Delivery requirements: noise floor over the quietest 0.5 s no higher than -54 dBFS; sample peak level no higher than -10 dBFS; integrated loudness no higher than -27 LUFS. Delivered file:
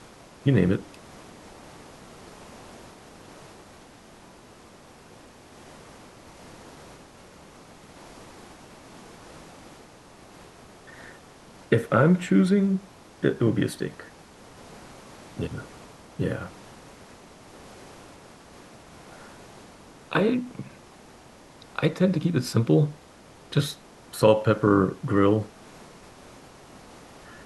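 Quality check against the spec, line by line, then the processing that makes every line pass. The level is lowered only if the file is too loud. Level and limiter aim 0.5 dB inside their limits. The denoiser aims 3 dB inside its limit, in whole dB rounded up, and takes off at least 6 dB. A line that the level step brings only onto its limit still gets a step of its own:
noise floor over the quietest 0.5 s -50 dBFS: fail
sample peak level -5.5 dBFS: fail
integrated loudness -24.0 LUFS: fail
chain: noise reduction 6 dB, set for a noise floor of -50 dBFS; trim -3.5 dB; peak limiter -10.5 dBFS

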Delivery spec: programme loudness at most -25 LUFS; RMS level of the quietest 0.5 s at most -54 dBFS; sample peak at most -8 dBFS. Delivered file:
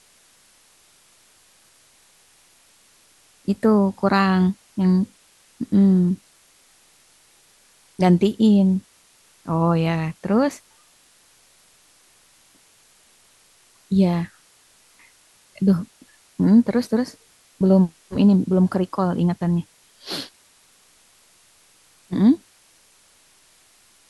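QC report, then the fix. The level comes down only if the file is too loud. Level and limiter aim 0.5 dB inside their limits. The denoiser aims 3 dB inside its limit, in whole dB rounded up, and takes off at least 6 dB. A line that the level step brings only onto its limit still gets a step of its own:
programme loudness -20.0 LUFS: fail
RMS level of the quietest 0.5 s -56 dBFS: pass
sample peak -5.5 dBFS: fail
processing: trim -5.5 dB

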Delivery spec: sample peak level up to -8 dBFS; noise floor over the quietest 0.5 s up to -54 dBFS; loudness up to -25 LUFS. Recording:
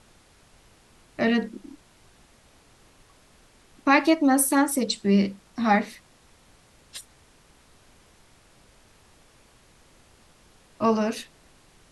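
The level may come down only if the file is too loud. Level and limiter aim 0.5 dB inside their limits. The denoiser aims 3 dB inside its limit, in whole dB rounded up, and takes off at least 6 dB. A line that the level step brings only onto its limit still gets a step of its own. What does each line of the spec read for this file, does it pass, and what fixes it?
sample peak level -7.5 dBFS: fail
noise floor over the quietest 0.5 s -57 dBFS: pass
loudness -23.0 LUFS: fail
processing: trim -2.5 dB

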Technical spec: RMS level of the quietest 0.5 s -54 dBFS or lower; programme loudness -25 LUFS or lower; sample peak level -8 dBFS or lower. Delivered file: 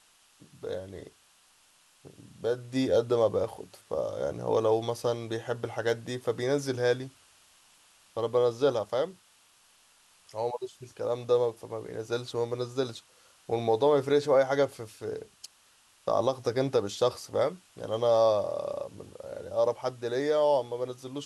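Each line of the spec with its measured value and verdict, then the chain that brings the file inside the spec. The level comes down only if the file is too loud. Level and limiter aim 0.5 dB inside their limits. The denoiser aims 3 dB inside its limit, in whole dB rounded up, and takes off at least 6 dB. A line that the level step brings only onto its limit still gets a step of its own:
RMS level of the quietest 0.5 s -63 dBFS: pass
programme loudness -29.0 LUFS: pass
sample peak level -12.0 dBFS: pass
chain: none needed

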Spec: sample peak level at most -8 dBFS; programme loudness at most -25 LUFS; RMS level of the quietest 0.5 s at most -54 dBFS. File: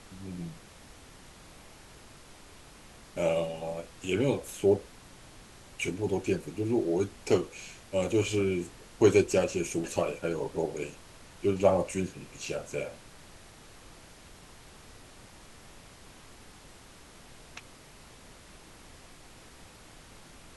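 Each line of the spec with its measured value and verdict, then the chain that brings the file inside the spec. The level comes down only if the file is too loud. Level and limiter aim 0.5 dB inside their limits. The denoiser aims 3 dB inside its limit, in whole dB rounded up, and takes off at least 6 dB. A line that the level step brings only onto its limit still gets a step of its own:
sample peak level -9.5 dBFS: pass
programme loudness -30.0 LUFS: pass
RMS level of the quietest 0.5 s -52 dBFS: fail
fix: noise reduction 6 dB, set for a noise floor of -52 dBFS

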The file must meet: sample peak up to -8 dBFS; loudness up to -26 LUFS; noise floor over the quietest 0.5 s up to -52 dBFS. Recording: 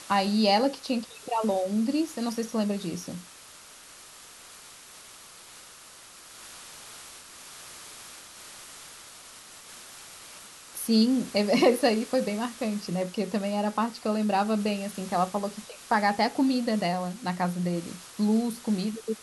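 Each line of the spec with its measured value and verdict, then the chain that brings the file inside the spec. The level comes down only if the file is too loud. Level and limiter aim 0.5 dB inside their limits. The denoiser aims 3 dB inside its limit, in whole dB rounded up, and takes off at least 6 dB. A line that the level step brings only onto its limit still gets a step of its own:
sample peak -9.5 dBFS: pass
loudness -27.0 LUFS: pass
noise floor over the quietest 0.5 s -49 dBFS: fail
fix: noise reduction 6 dB, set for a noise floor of -49 dBFS

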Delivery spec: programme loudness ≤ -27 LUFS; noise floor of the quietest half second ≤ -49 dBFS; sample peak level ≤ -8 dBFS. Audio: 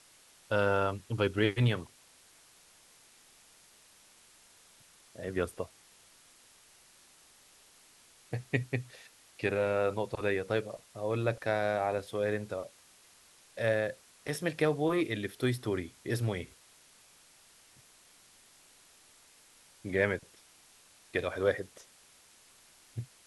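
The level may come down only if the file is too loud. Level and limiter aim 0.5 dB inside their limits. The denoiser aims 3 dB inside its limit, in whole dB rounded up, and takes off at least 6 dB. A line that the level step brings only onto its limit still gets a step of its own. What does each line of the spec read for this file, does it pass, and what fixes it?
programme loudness -33.0 LUFS: pass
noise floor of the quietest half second -61 dBFS: pass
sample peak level -12.5 dBFS: pass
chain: none needed

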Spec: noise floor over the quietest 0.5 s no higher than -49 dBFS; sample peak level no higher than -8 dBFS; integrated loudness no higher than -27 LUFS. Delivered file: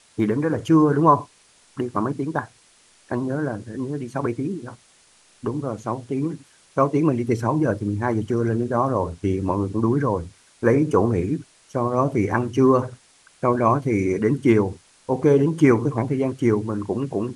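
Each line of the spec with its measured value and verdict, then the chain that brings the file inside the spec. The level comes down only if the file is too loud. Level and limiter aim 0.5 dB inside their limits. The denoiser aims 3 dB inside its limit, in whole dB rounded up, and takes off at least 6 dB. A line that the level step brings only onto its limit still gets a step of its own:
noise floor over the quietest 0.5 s -56 dBFS: pass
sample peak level -3.0 dBFS: fail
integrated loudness -22.0 LUFS: fail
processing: trim -5.5 dB

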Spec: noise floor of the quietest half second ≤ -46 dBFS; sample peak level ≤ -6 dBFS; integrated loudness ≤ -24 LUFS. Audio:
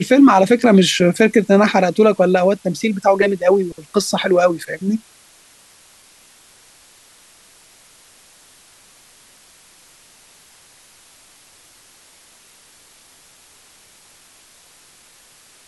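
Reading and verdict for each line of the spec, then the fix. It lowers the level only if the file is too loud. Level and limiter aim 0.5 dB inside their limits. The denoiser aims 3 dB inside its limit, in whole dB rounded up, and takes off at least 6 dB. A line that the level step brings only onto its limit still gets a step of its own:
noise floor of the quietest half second -49 dBFS: pass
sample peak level -2.0 dBFS: fail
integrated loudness -15.0 LUFS: fail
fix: trim -9.5 dB

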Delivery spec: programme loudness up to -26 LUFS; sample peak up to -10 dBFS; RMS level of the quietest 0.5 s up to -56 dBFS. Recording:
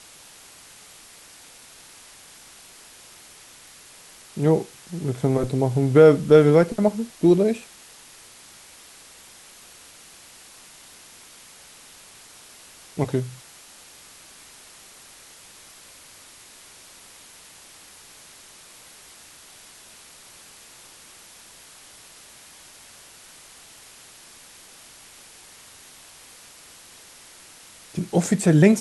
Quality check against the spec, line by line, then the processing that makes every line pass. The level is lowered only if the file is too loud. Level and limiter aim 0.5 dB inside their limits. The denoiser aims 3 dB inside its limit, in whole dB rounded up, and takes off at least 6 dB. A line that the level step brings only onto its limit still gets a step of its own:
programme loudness -20.0 LUFS: fail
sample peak -3.0 dBFS: fail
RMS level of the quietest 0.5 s -48 dBFS: fail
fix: noise reduction 6 dB, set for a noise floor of -48 dBFS; trim -6.5 dB; peak limiter -10.5 dBFS

